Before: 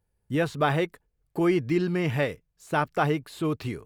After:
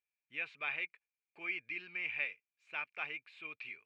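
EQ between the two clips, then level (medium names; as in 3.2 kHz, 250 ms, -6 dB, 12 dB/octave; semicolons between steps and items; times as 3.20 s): band-pass filter 2.4 kHz, Q 14; distance through air 68 m; +8.0 dB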